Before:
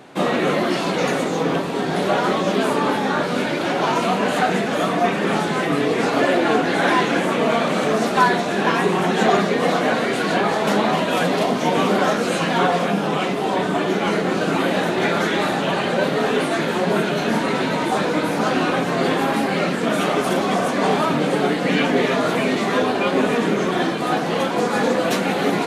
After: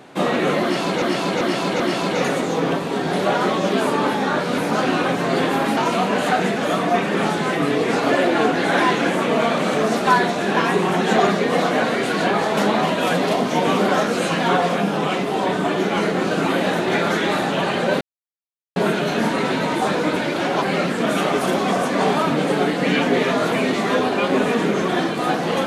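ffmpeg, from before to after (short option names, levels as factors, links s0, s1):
-filter_complex "[0:a]asplit=10[s0][s1][s2][s3][s4][s5][s6][s7][s8][s9];[s0]atrim=end=1.022[s10];[s1]atrim=start=0.628:end=1.022[s11];[s2]atrim=start=0.628:end=1.022[s12];[s3]atrim=start=0.628:end=3.412[s13];[s4]atrim=start=18.258:end=19.452[s14];[s5]atrim=start=3.868:end=16.11,asetpts=PTS-STARTPTS,afade=t=out:st=12.238:d=0.004:c=hsin[s15];[s6]atrim=start=16.11:end=16.86,asetpts=PTS-STARTPTS,volume=0[s16];[s7]atrim=start=16.86:end=18.262,asetpts=PTS-STARTPTS,afade=t=in:d=0.004:c=hsin[s17];[s8]atrim=start=3.408:end=3.872[s18];[s9]atrim=start=19.448[s19];[s10][s11]acrossfade=d=0.004:c1=hsin:c2=hsin[s20];[s20][s12]acrossfade=d=0.004:c1=hsin:c2=hsin[s21];[s21][s13]acrossfade=d=0.004:c1=hsin:c2=hsin[s22];[s22][s14]acrossfade=d=0.004:c1=hsin:c2=hsin[s23];[s15][s16][s17]concat=n=3:v=0:a=1[s24];[s23][s24]acrossfade=d=0.004:c1=hsin:c2=hsin[s25];[s25][s18]acrossfade=d=0.004:c1=hsin:c2=hsin[s26];[s26][s19]acrossfade=d=0.004:c1=hsin:c2=hsin"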